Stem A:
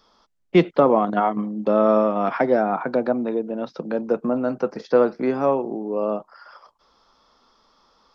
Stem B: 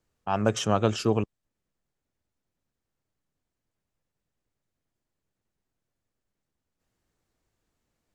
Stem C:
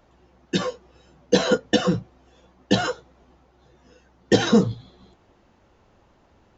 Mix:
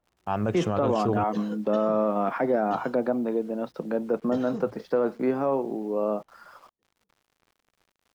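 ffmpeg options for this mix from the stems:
-filter_complex "[0:a]volume=-2.5dB[a];[1:a]volume=0.5dB[b];[2:a]volume=-19.5dB,asplit=2[c][d];[d]volume=-21dB[e];[a][b]amix=inputs=2:normalize=0,acrusher=bits=8:mix=0:aa=0.000001,alimiter=limit=-14.5dB:level=0:latency=1:release=21,volume=0dB[f];[e]aecho=0:1:618|1236|1854|2472|3090:1|0.34|0.116|0.0393|0.0134[g];[c][f][g]amix=inputs=3:normalize=0,highshelf=f=3.3k:g=-9.5"

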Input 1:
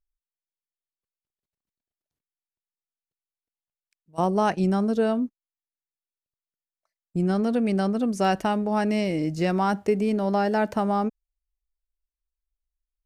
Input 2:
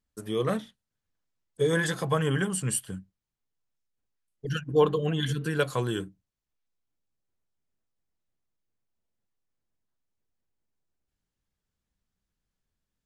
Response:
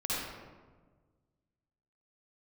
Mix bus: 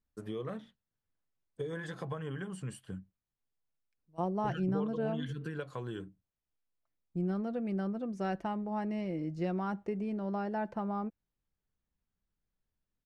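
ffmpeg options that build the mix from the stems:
-filter_complex "[0:a]aecho=1:1:5.8:0.36,adynamicequalizer=threshold=0.0126:dfrequency=2500:dqfactor=0.7:tfrequency=2500:tqfactor=0.7:attack=5:release=100:ratio=0.375:range=2.5:mode=cutabove:tftype=highshelf,volume=-12.5dB[a];[1:a]acompressor=threshold=-32dB:ratio=8,volume=-4dB[b];[a][b]amix=inputs=2:normalize=0,aemphasis=mode=reproduction:type=75fm"

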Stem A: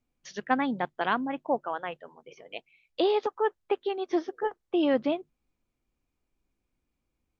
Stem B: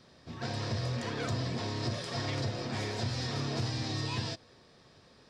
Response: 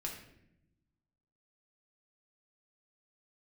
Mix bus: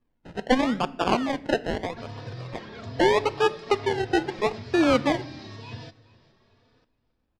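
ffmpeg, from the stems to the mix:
-filter_complex "[0:a]acrusher=samples=30:mix=1:aa=0.000001:lfo=1:lforange=18:lforate=0.79,volume=3dB,asplit=2[a][b];[b]volume=-10.5dB[c];[1:a]asplit=2[d][e];[e]adelay=3.4,afreqshift=1.1[f];[d][f]amix=inputs=2:normalize=1,adelay=1550,volume=-2.5dB,asplit=3[g][h][i];[h]volume=-14.5dB[j];[i]volume=-20dB[k];[2:a]atrim=start_sample=2205[l];[c][j]amix=inputs=2:normalize=0[m];[m][l]afir=irnorm=-1:irlink=0[n];[k]aecho=0:1:416|832|1248|1664:1|0.29|0.0841|0.0244[o];[a][g][n][o]amix=inputs=4:normalize=0,lowpass=4k"

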